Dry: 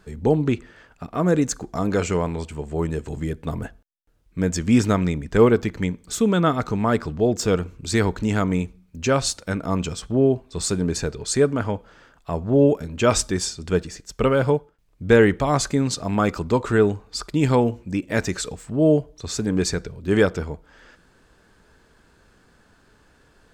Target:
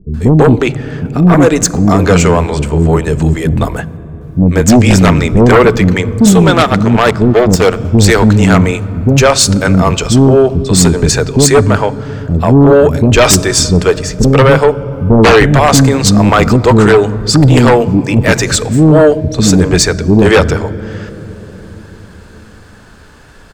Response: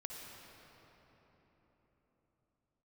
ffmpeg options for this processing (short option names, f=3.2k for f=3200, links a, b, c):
-filter_complex "[0:a]asettb=1/sr,asplit=3[a][b][c];[a]atrim=end=6.394[d];[b]atrim=start=6.39:end=7.71,asetpts=PTS-STARTPTS,afade=t=in:d=0.004:c=qsin,afade=t=out:st=1.316:d=0.004:c=qsin,aeval=exprs='0.447*(cos(1*acos(clip(val(0)/0.447,-1,1)))-cos(1*PI/2))+0.0447*(cos(7*acos(clip(val(0)/0.447,-1,1)))-cos(7*PI/2))':c=same[e];[c]atrim=start=7.706[f];[d][e]acrossfade=d=0.004:c1=hsin:c2=qsin[g];[g][f]acrossfade=d=0.004:c1=qsin:c2=hsin,acrossover=split=350[h][i];[i]adelay=140[j];[h][j]amix=inputs=2:normalize=0,asplit=2[k][l];[1:a]atrim=start_sample=2205,lowshelf=f=330:g=11[m];[l][m]afir=irnorm=-1:irlink=0,volume=-16.5dB[n];[k][n]amix=inputs=2:normalize=0,aeval=exprs='0.668*sin(PI/2*3.16*val(0)/0.668)':c=same,volume=2.5dB"